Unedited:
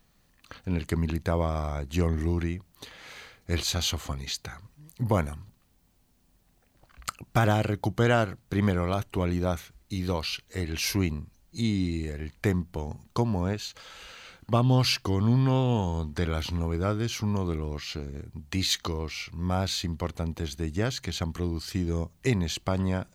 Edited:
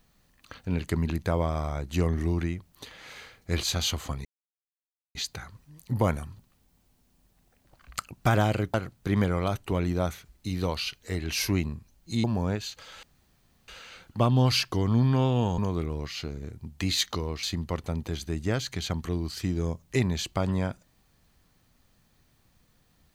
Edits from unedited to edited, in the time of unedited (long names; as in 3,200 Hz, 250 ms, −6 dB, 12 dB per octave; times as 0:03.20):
0:04.25: splice in silence 0.90 s
0:07.84–0:08.20: remove
0:11.70–0:13.22: remove
0:14.01: splice in room tone 0.65 s
0:15.91–0:17.30: remove
0:19.15–0:19.74: remove